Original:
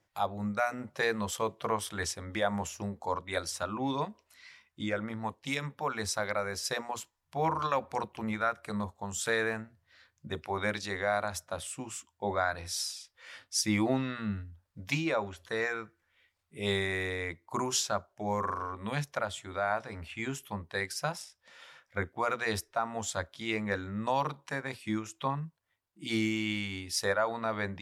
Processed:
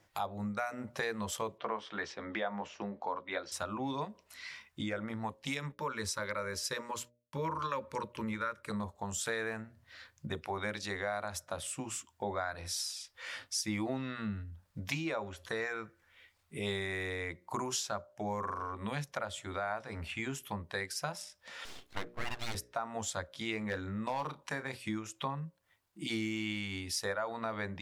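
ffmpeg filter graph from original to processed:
ffmpeg -i in.wav -filter_complex "[0:a]asettb=1/sr,asplit=3[link_01][link_02][link_03];[link_01]atrim=end=1.584[link_04];[link_02]atrim=start=1.58:end=3.52,asetpts=PTS-STARTPTS,afade=type=in:duration=0.004:curve=qsin,afade=type=out:start_time=1.936:duration=0.004:curve=qsin,lowpass=frequency=6300:width=0.5412,lowpass=frequency=6300:width=1.3066,acrossover=split=190 3900:gain=0.112 1 0.141[link_05][link_06][link_07];[link_05][link_06][link_07]amix=inputs=3:normalize=0,asplit=2[link_08][link_09];[link_09]adelay=14,volume=-11dB[link_10];[link_08][link_10]amix=inputs=2:normalize=0,atrim=end_sample=85554[link_11];[link_03]atrim=start=3.516[link_12];[link_04][link_11]acrossfade=duration=0.004:curve1=hsin:curve2=qsin[link_13];[link_13][link_12]acrossfade=duration=0.004:curve1=qsin:curve2=hsin,asettb=1/sr,asplit=3[link_14][link_15][link_16];[link_14]atrim=end=5.724[link_17];[link_15]atrim=start=5.72:end=8.71,asetpts=PTS-STARTPTS,afade=type=in:duration=0.004:curve=qsin,afade=type=out:start_time=2.986:duration=0.004:curve=qsin,asuperstop=centerf=730:order=8:qfactor=3.1,agate=range=-33dB:threshold=-56dB:ratio=3:release=100:detection=peak[link_18];[link_16]atrim=start=8.706[link_19];[link_17][link_18]acrossfade=duration=0.004:curve1=hsin:curve2=qsin[link_20];[link_20][link_19]acrossfade=duration=0.004:curve1=qsin:curve2=hsin,asettb=1/sr,asplit=3[link_21][link_22][link_23];[link_21]atrim=end=21.654[link_24];[link_22]atrim=start=21.65:end=22.55,asetpts=PTS-STARTPTS,afade=type=in:duration=0.004:curve=qsin,afade=type=out:start_time=0.896:duration=0.004:curve=qsin,aecho=1:1:2.9:0.36,atrim=end_sample=39690,aeval=exprs='abs(val(0))':channel_layout=same[link_25];[link_23]atrim=start=22.546[link_26];[link_24][link_25]acrossfade=duration=0.004:curve1=hsin:curve2=qsin[link_27];[link_27][link_26]acrossfade=duration=0.004:curve1=qsin:curve2=hsin,asettb=1/sr,asplit=3[link_28][link_29][link_30];[link_28]atrim=end=23.584[link_31];[link_29]atrim=start=23.58:end=24.84,asetpts=PTS-STARTPTS,afade=type=in:duration=0.004:curve=qsin,afade=type=out:start_time=1.256:duration=0.004:curve=qsin,volume=22.5dB,asoftclip=hard,volume=-22.5dB,asplit=2[link_32][link_33];[link_33]adelay=32,volume=-13.5dB[link_34];[link_32][link_34]amix=inputs=2:normalize=0,atrim=end_sample=55566[link_35];[link_30]atrim=start=24.836[link_36];[link_31][link_35]acrossfade=duration=0.004:curve1=hsin:curve2=qsin[link_37];[link_37][link_36]acrossfade=duration=0.004:curve1=qsin:curve2=hsin,bandreject=frequency=60:width_type=h:width=6,bandreject=frequency=120:width_type=h:width=6,bandreject=frequency=180:width_type=h:width=6,bandreject=frequency=240:width_type=h:width=6,bandreject=frequency=300:width_type=h:width=6,bandreject=frequency=360:width_type=h:width=6,bandreject=frequency=420:width_type=h:width=6,bandreject=frequency=480:width_type=h:width=6,bandreject=frequency=540:width_type=h:width=6,bandreject=frequency=600:width_type=h:width=6,acompressor=threshold=-47dB:ratio=2.5,volume=7.5dB" out.wav

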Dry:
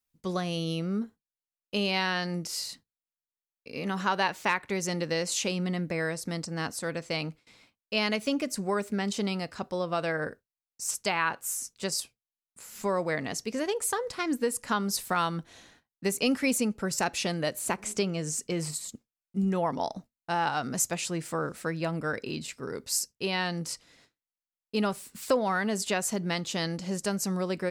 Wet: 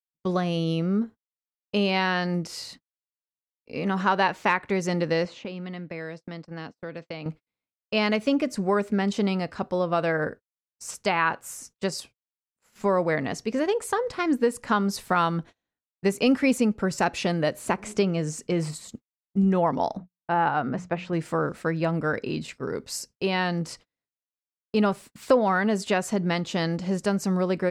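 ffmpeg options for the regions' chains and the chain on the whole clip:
ffmpeg -i in.wav -filter_complex "[0:a]asettb=1/sr,asplit=3[link_01][link_02][link_03];[link_01]atrim=end=5.254[link_04];[link_02]atrim=start=5.25:end=7.26,asetpts=PTS-STARTPTS,afade=type=in:duration=0.004:curve=qsin,afade=type=out:start_time=2.006:duration=0.004:curve=qsin,acrossover=split=780|2900[link_05][link_06][link_07];[link_05]acompressor=threshold=-41dB:ratio=4[link_08];[link_06]acompressor=threshold=-49dB:ratio=4[link_09];[link_07]acompressor=threshold=-42dB:ratio=4[link_10];[link_08][link_09][link_10]amix=inputs=3:normalize=0,highpass=120,lowpass=3900[link_11];[link_03]atrim=start=7.256[link_12];[link_04][link_11]acrossfade=duration=0.004:curve1=hsin:curve2=qsin[link_13];[link_13][link_12]acrossfade=duration=0.004:curve1=qsin:curve2=hsin,asettb=1/sr,asplit=3[link_14][link_15][link_16];[link_14]atrim=end=19.974[link_17];[link_15]atrim=start=19.97:end=21.13,asetpts=PTS-STARTPTS,afade=type=in:duration=0.004:curve=qsin,afade=type=out:start_time=1.156:duration=0.004:curve=qsin,lowpass=2300,bandreject=frequency=60:width_type=h:width=6,bandreject=frequency=120:width_type=h:width=6,bandreject=frequency=180:width_type=h:width=6[link_18];[link_16]atrim=start=21.126[link_19];[link_17][link_18]acrossfade=duration=0.004:curve1=hsin:curve2=qsin[link_20];[link_20][link_19]acrossfade=duration=0.004:curve1=qsin:curve2=hsin,agate=range=-36dB:threshold=-44dB:ratio=16:detection=peak,lowpass=frequency=2000:poles=1,volume=6dB" out.wav

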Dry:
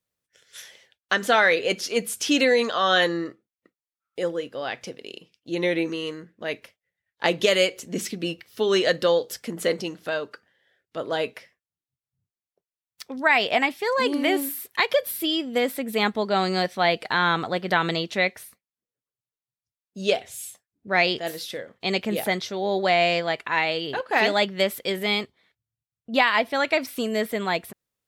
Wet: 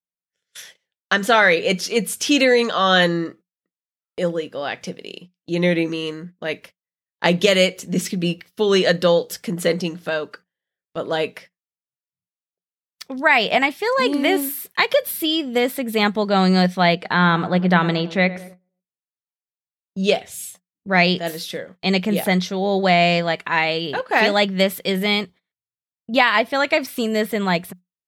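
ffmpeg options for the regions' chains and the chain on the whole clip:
ffmpeg -i in.wav -filter_complex "[0:a]asettb=1/sr,asplit=3[link_01][link_02][link_03];[link_01]atrim=end=16.954[link_04];[link_02]atrim=start=16.95:end=20.04,asetpts=PTS-STARTPTS,afade=type=in:duration=0.004:curve=qsin,afade=type=out:start_time=3.086:duration=0.004:curve=qsin,aemphasis=mode=reproduction:type=50fm,asplit=2[link_05][link_06];[link_06]adelay=105,lowpass=frequency=1400:poles=1,volume=-14.5dB,asplit=2[link_07][link_08];[link_08]adelay=105,lowpass=frequency=1400:poles=1,volume=0.53,asplit=2[link_09][link_10];[link_10]adelay=105,lowpass=frequency=1400:poles=1,volume=0.53,asplit=2[link_11][link_12];[link_12]adelay=105,lowpass=frequency=1400:poles=1,volume=0.53,asplit=2[link_13][link_14];[link_14]adelay=105,lowpass=frequency=1400:poles=1,volume=0.53[link_15];[link_05][link_07][link_09][link_11][link_13][link_15]amix=inputs=6:normalize=0,atrim=end_sample=136269[link_16];[link_03]atrim=start=20.036[link_17];[link_04][link_16]acrossfade=duration=0.004:curve1=hsin:curve2=qsin[link_18];[link_18][link_17]acrossfade=duration=0.004:curve1=qsin:curve2=hsin,agate=range=-24dB:threshold=-46dB:ratio=16:detection=peak,equalizer=frequency=180:width_type=o:width=0.21:gain=12,volume=4dB" out.wav

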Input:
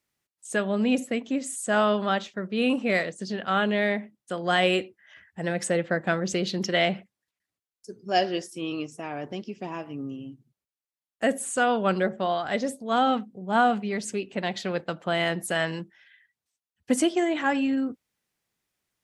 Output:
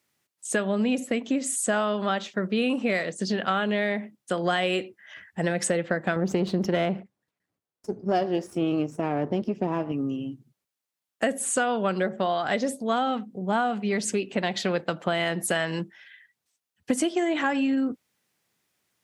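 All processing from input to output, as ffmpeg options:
ffmpeg -i in.wav -filter_complex "[0:a]asettb=1/sr,asplit=3[link_01][link_02][link_03];[link_01]atrim=end=6.164[link_04];[link_02]atrim=start=6.16:end=9.92,asetpts=PTS-STARTPTS,afade=type=in:duration=0.004:curve=qsin,afade=type=out:start_time=3.756:duration=0.004:curve=qsin,aeval=exprs='if(lt(val(0),0),0.447*val(0),val(0))':channel_layout=same,tiltshelf=frequency=1400:gain=7.5[link_05];[link_03]atrim=start=9.916[link_06];[link_04][link_05]acrossfade=duration=0.004:curve1=hsin:curve2=qsin[link_07];[link_07][link_06]acrossfade=duration=0.004:curve1=qsin:curve2=hsin,highpass=100,acompressor=threshold=-28dB:ratio=6,volume=6.5dB" out.wav

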